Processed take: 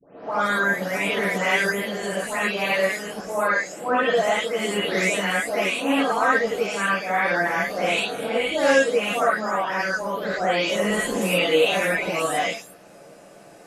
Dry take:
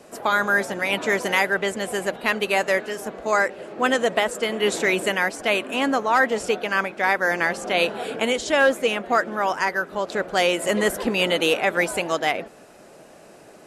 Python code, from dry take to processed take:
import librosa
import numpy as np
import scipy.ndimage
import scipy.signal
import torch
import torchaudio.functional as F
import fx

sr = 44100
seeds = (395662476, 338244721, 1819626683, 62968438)

y = fx.spec_delay(x, sr, highs='late', ms=319)
y = fx.vibrato(y, sr, rate_hz=1.2, depth_cents=20.0)
y = fx.rev_gated(y, sr, seeds[0], gate_ms=120, shape='rising', drr_db=-7.0)
y = y * 10.0 ** (-7.0 / 20.0)